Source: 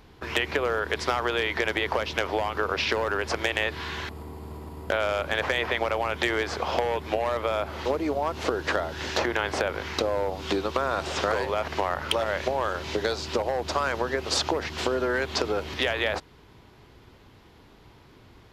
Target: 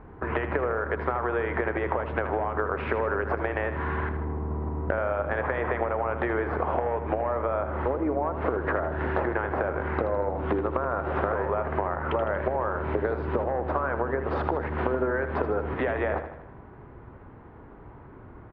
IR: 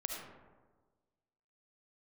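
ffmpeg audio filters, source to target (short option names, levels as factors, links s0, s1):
-filter_complex "[0:a]lowpass=f=1600:w=0.5412,lowpass=f=1600:w=1.3066,acompressor=threshold=0.0316:ratio=6,asplit=2[s0][s1];[s1]aecho=0:1:79|158|237|316|395|474:0.316|0.171|0.0922|0.0498|0.0269|0.0145[s2];[s0][s2]amix=inputs=2:normalize=0,volume=2"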